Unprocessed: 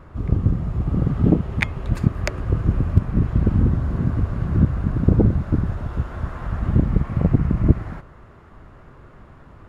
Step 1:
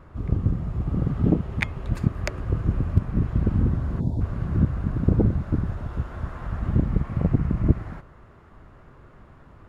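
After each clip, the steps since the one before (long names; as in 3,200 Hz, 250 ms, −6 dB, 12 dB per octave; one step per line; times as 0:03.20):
gain on a spectral selection 0:04.00–0:04.21, 1,000–3,300 Hz −24 dB
level −4 dB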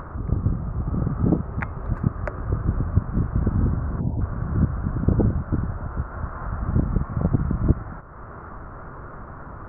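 drawn EQ curve 390 Hz 0 dB, 1,400 Hz +6 dB, 3,100 Hz −24 dB
upward compression, threshold −26 dBFS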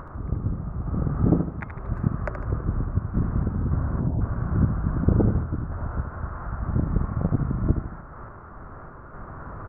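sample-and-hold tremolo
repeating echo 76 ms, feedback 38%, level −8 dB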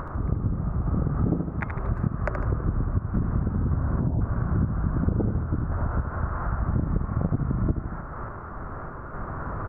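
downward compressor 4 to 1, threshold −27 dBFS, peak gain reduction 12.5 dB
level +5.5 dB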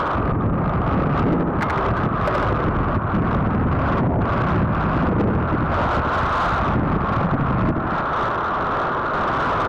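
mid-hump overdrive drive 32 dB, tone 1,500 Hz, clips at −10.5 dBFS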